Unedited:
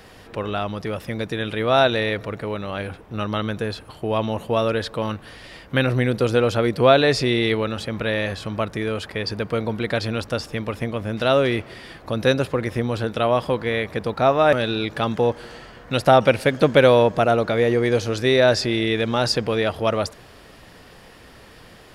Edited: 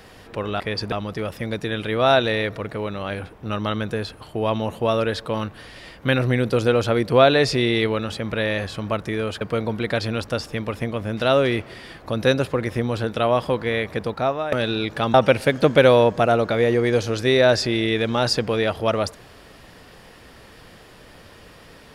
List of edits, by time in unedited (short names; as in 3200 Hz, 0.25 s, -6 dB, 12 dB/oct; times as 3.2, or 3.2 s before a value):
9.09–9.41 move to 0.6
14.01–14.52 fade out, to -14.5 dB
15.14–16.13 cut